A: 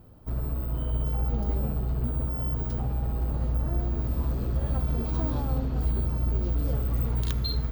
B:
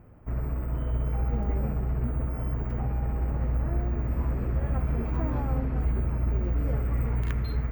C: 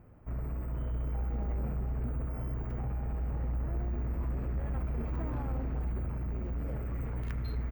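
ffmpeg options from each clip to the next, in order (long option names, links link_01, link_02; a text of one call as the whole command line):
ffmpeg -i in.wav -af "highshelf=frequency=2900:width_type=q:width=3:gain=-10" out.wav
ffmpeg -i in.wav -af "asoftclip=type=tanh:threshold=-25dB,aecho=1:1:468:0.224,volume=-4dB" out.wav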